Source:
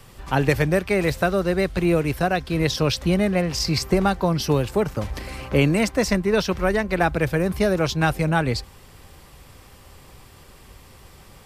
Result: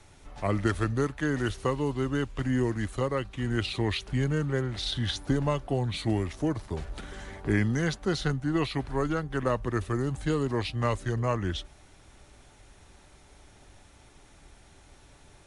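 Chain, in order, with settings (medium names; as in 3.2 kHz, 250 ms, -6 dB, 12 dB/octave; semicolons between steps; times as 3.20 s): speed mistake 45 rpm record played at 33 rpm; trim -7.5 dB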